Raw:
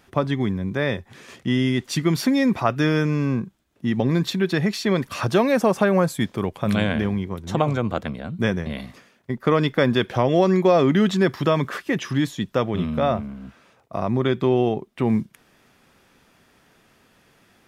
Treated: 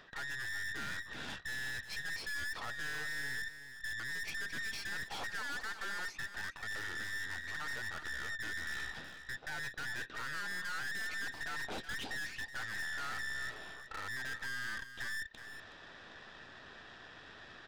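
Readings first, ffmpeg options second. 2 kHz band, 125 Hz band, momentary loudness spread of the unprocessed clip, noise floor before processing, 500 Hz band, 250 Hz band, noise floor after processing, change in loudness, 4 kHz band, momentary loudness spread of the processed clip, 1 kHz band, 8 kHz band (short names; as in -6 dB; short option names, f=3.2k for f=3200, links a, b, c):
-5.5 dB, -30.5 dB, 10 LU, -59 dBFS, -33.5 dB, -35.0 dB, -54 dBFS, -18.0 dB, -11.5 dB, 12 LU, -19.0 dB, -8.5 dB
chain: -filter_complex "[0:a]afftfilt=real='real(if(between(b,1,1012),(2*floor((b-1)/92)+1)*92-b,b),0)':imag='imag(if(between(b,1,1012),(2*floor((b-1)/92)+1)*92-b,b),0)*if(between(b,1,1012),-1,1)':win_size=2048:overlap=0.75,lowpass=f=5k:w=0.5412,lowpass=f=5k:w=1.3066,areverse,acompressor=threshold=-28dB:ratio=12,areverse,alimiter=level_in=5dB:limit=-24dB:level=0:latency=1:release=459,volume=-5dB,aeval=exprs='(tanh(224*val(0)+0.7)-tanh(0.7))/224':c=same,asplit=2[a][b];[b]aecho=0:1:372:0.282[c];[a][c]amix=inputs=2:normalize=0,volume=8dB"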